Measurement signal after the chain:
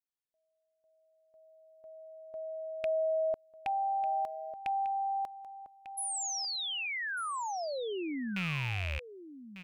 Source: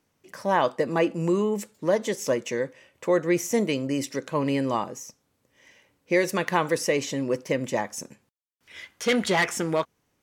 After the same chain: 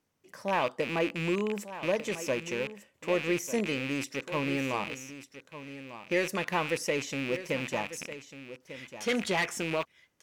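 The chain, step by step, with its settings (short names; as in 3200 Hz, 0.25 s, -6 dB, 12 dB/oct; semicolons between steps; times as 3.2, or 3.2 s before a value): rattling part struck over -42 dBFS, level -18 dBFS; echo 1.197 s -13 dB; gain -6.5 dB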